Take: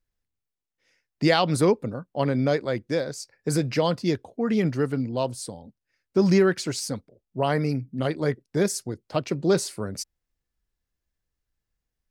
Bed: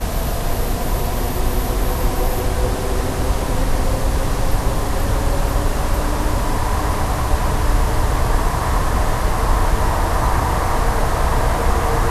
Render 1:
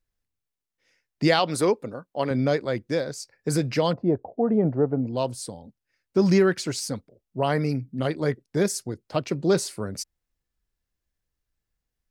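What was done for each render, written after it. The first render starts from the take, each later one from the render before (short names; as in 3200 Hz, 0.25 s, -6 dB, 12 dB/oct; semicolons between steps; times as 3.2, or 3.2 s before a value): 1.39–2.31 tone controls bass -9 dB, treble +1 dB; 3.93–5.07 synth low-pass 730 Hz, resonance Q 2.7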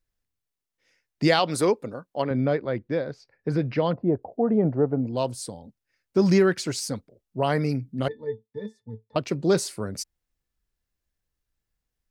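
2.22–4.23 air absorption 320 m; 8.08–9.16 octave resonator A, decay 0.14 s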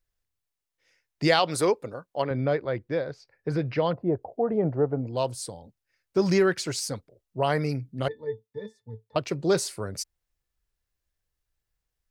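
bell 230 Hz -8 dB 0.78 oct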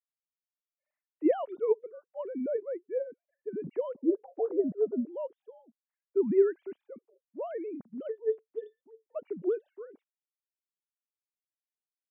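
sine-wave speech; band-pass 250 Hz, Q 1.3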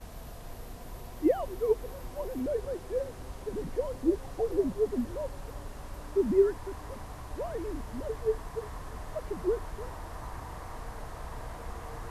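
add bed -23.5 dB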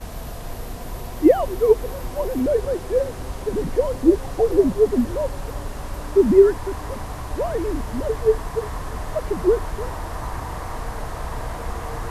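gain +11.5 dB; limiter -3 dBFS, peak gain reduction 1 dB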